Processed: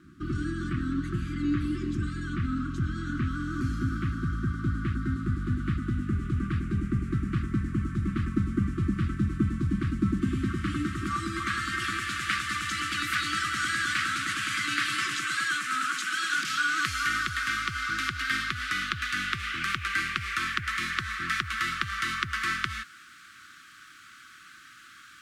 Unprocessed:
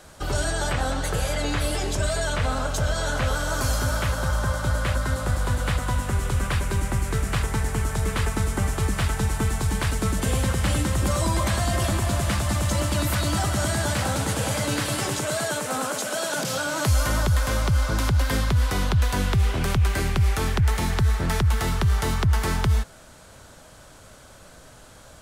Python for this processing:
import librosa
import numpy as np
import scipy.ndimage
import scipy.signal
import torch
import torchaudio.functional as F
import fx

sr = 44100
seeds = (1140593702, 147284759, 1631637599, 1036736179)

y = fx.dmg_noise_colour(x, sr, seeds[0], colour='blue', level_db=-54.0)
y = fx.brickwall_bandstop(y, sr, low_hz=370.0, high_hz=1100.0)
y = fx.filter_sweep_bandpass(y, sr, from_hz=290.0, to_hz=1800.0, start_s=10.03, end_s=12.09, q=0.98)
y = y * librosa.db_to_amplitude(5.0)